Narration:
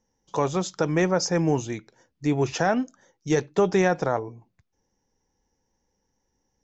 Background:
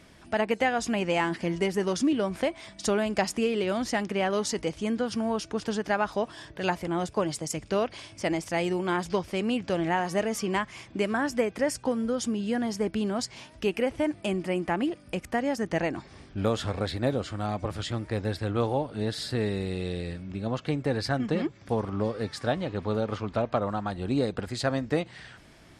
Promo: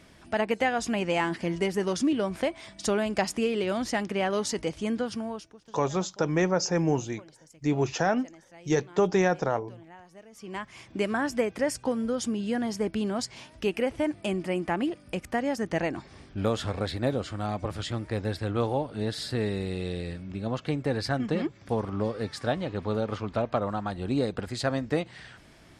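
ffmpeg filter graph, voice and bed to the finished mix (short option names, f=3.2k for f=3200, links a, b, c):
-filter_complex "[0:a]adelay=5400,volume=-2.5dB[a];[1:a]volume=22dB,afade=t=out:st=4.97:d=0.6:silence=0.0749894,afade=t=in:st=10.32:d=0.69:silence=0.0749894[b];[a][b]amix=inputs=2:normalize=0"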